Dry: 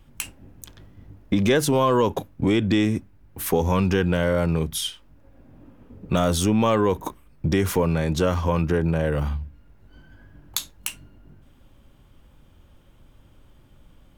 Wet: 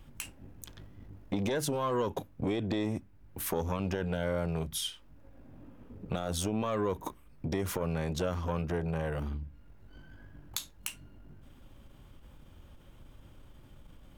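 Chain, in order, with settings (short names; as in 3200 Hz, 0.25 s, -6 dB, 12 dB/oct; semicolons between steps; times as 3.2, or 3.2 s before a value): compressor 1.5:1, threshold -42 dBFS, peak gain reduction 9.5 dB; core saturation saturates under 760 Hz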